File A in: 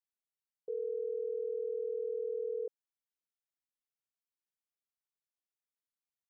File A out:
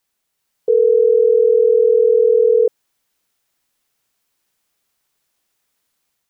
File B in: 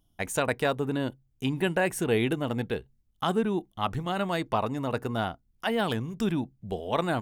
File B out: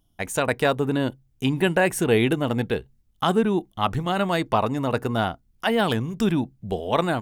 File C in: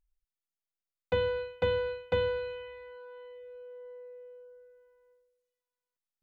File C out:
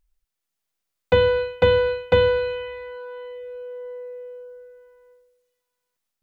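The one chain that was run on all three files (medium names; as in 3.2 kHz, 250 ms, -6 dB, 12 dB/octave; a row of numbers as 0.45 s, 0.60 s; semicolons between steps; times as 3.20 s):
level rider gain up to 3.5 dB; peak normalisation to -6 dBFS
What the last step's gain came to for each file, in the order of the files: +21.0 dB, +2.5 dB, +8.5 dB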